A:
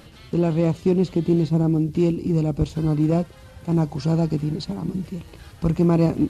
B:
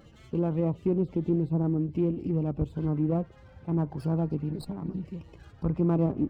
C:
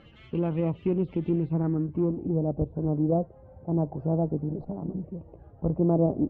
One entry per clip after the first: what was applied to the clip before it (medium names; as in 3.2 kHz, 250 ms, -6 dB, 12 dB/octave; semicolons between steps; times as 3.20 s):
loudest bins only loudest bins 64; low-pass that closes with the level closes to 1.5 kHz, closed at -15.5 dBFS; sliding maximum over 5 samples; trim -7 dB
low-pass sweep 2.8 kHz -> 650 Hz, 1.39–2.39 s